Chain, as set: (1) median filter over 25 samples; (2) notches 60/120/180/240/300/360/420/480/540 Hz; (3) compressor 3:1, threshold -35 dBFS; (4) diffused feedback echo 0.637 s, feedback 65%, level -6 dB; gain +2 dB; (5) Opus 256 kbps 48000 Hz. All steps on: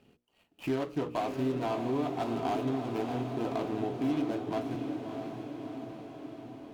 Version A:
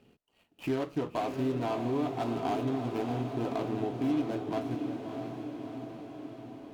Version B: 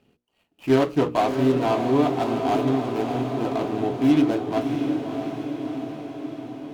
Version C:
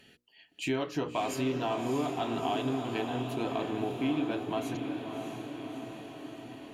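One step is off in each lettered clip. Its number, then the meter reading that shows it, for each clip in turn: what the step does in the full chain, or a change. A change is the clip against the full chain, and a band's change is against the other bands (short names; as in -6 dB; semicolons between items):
2, 125 Hz band +2.0 dB; 3, mean gain reduction 8.0 dB; 1, 4 kHz band +6.5 dB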